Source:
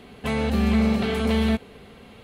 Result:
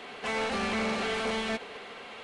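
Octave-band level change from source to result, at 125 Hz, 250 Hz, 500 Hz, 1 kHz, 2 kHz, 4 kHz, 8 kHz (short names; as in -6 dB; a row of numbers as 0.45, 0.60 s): -19.0, -13.5, -5.5, -0.5, 0.0, -1.5, +0.5 dB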